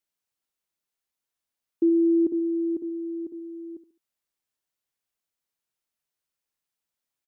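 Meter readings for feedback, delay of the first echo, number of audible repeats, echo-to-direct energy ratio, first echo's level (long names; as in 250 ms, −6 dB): 31%, 70 ms, 3, −13.0 dB, −13.5 dB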